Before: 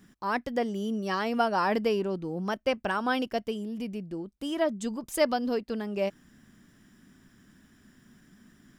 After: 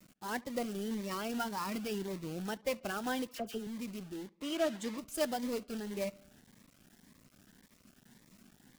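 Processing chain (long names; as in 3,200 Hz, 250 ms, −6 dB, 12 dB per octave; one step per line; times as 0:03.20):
spectral magnitudes quantised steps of 15 dB
0:01.38–0:02.08: parametric band 570 Hz −10 dB 0.82 octaves
log-companded quantiser 4 bits
0:03.27–0:03.67: all-pass dispersion lows, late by 67 ms, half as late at 1,500 Hz
0:04.28–0:04.98: mid-hump overdrive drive 13 dB, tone 3,000 Hz, clips at −12 dBFS
feedback echo with a low-pass in the loop 71 ms, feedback 59%, low-pass 4,300 Hz, level −24 dB
phaser whose notches keep moving one way rising 1.8 Hz
level −6.5 dB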